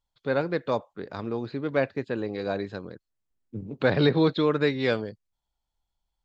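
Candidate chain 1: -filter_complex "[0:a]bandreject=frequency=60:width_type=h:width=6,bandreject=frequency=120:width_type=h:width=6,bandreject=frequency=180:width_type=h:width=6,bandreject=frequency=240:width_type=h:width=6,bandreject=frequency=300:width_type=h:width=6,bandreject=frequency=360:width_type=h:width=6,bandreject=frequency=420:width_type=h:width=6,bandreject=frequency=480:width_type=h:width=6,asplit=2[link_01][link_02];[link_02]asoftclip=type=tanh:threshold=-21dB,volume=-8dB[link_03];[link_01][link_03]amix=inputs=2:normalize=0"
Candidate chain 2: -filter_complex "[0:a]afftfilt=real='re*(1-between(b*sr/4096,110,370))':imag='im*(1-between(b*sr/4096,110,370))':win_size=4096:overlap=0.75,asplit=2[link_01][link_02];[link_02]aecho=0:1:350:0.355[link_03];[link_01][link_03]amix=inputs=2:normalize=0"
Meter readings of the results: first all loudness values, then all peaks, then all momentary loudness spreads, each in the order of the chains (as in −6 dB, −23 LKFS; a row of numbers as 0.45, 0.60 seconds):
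−25.0, −29.0 LKFS; −7.0, −10.5 dBFS; 16, 15 LU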